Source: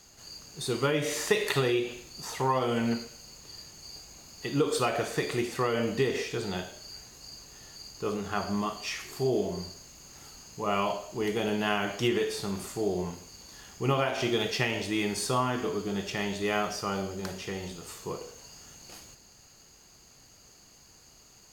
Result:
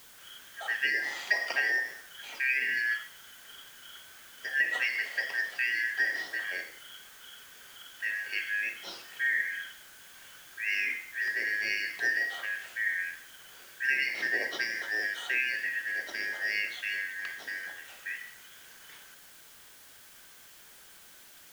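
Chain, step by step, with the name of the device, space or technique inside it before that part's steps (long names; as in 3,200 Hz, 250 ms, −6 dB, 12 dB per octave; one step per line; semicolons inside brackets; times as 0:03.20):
split-band scrambled radio (band-splitting scrambler in four parts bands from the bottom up 3142; band-pass filter 370–3,300 Hz; white noise bed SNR 20 dB)
level −1.5 dB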